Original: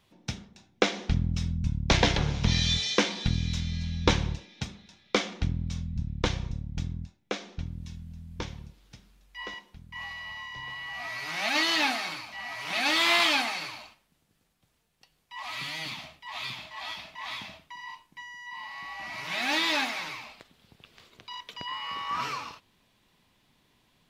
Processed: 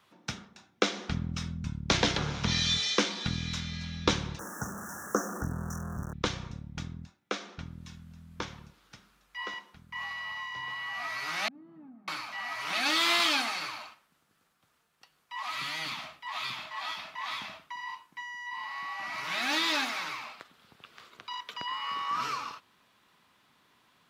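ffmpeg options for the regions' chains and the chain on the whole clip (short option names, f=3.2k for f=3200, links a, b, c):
-filter_complex "[0:a]asettb=1/sr,asplit=3[a][b][c];[a]atrim=end=4.394[d];[b]atrim=start=4.39:end=6.13,asetpts=PTS-STARTPTS,afade=t=in:d=0.004:c=qsin,afade=t=out:st=1.736:d=0.004:c=qsin,aeval=exprs='val(0)+0.5*0.0188*sgn(val(0))':c=same,asuperstop=centerf=3200:order=20:qfactor=0.82[e];[c]atrim=start=6.126[f];[d][e]acrossfade=d=0.004:c1=hsin:c2=qsin[g];[g][f]acrossfade=d=0.004:c1=qsin:c2=hsin,asettb=1/sr,asplit=3[h][i][j];[h]atrim=end=11.484[k];[i]atrim=start=11.48:end=12.08,asetpts=PTS-STARTPTS,afade=t=in:d=0.004:c=qsin,afade=t=out:st=0.596:d=0.004:c=qsin,asuperpass=centerf=170:order=4:qfactor=1.6,acompressor=threshold=-46dB:ratio=2.5:attack=3.2:release=140:knee=1:detection=peak[l];[j]atrim=start=12.076[m];[k][l]acrossfade=d=0.004:c1=hsin:c2=qsin[n];[n][m]acrossfade=d=0.004:c1=qsin:c2=hsin,highpass=f=210:p=1,equalizer=f=1.3k:t=o:w=0.82:g=10,acrossover=split=500|3000[o][p][q];[p]acompressor=threshold=-38dB:ratio=2[r];[o][r][q]amix=inputs=3:normalize=0"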